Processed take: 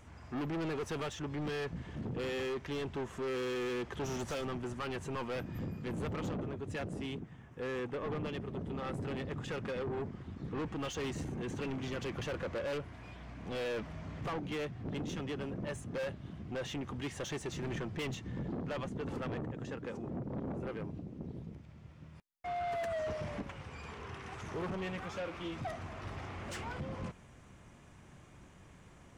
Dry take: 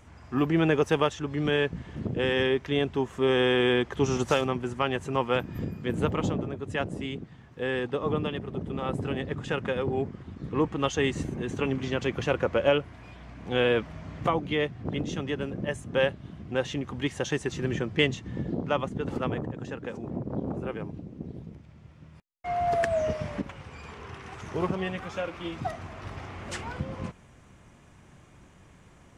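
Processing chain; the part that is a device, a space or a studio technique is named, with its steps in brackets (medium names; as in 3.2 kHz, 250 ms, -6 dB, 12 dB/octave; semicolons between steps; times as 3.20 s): 7.19–8.32 s: peaking EQ 4.3 kHz -11 dB 0.5 oct; saturation between pre-emphasis and de-emphasis (treble shelf 5 kHz +11.5 dB; saturation -31.5 dBFS, distortion -5 dB; treble shelf 5 kHz -11.5 dB); trim -2.5 dB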